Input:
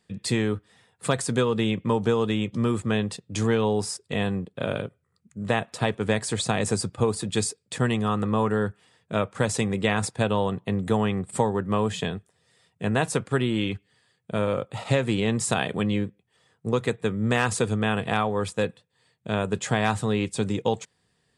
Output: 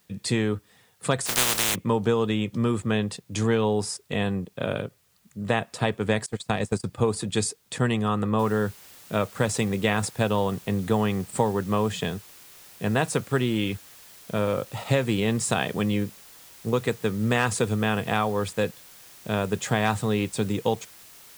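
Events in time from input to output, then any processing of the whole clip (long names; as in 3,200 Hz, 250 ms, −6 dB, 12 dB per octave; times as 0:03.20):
0:01.25–0:01.74: compressing power law on the bin magnitudes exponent 0.12
0:06.26–0:06.84: noise gate −26 dBFS, range −26 dB
0:08.39: noise floor change −66 dB −49 dB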